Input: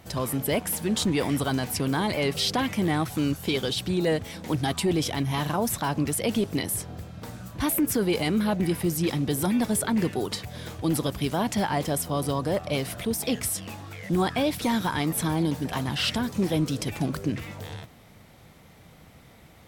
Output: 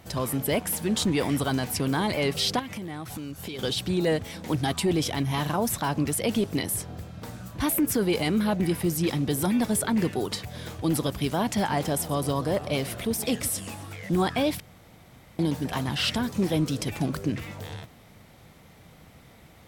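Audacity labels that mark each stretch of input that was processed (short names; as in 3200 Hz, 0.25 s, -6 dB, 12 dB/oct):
2.590000	3.590000	compressor 10:1, threshold -32 dBFS
11.500000	13.960000	warbling echo 0.13 s, feedback 55%, depth 219 cents, level -17 dB
14.600000	15.390000	room tone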